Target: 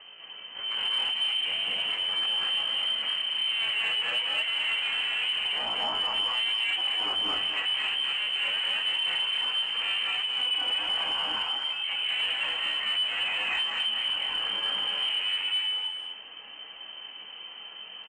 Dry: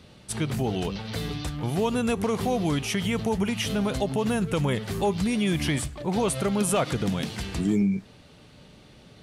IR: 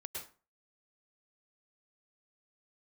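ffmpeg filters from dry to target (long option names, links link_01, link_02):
-filter_complex "[0:a]equalizer=frequency=110:width_type=o:width=0.58:gain=7,alimiter=limit=-18.5dB:level=0:latency=1:release=366,atempo=0.51,asoftclip=type=hard:threshold=-31dB,lowpass=frequency=2700:width_type=q:width=0.5098,lowpass=frequency=2700:width_type=q:width=0.6013,lowpass=frequency=2700:width_type=q:width=0.9,lowpass=frequency=2700:width_type=q:width=2.563,afreqshift=-3200,asplit=2[link_01][link_02];[link_02]adelay=250,highpass=300,lowpass=3400,asoftclip=type=hard:threshold=-32dB,volume=-8dB[link_03];[link_01][link_03]amix=inputs=2:normalize=0[link_04];[1:a]atrim=start_sample=2205,afade=type=out:start_time=0.18:duration=0.01,atrim=end_sample=8379,asetrate=23373,aresample=44100[link_05];[link_04][link_05]afir=irnorm=-1:irlink=0,asplit=2[link_06][link_07];[link_07]highpass=frequency=720:poles=1,volume=10dB,asoftclip=type=tanh:threshold=-18dB[link_08];[link_06][link_08]amix=inputs=2:normalize=0,lowpass=frequency=1400:poles=1,volume=-6dB,volume=5dB"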